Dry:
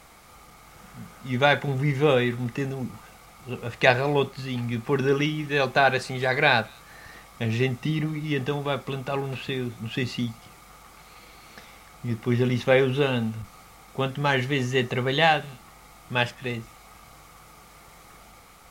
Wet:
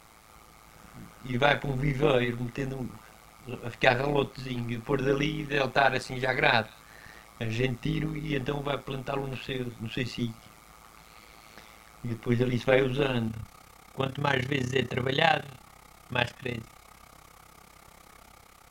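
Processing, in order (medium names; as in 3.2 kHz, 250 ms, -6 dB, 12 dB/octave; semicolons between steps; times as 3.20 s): AM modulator 110 Hz, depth 70%, from 13.27 s modulator 33 Hz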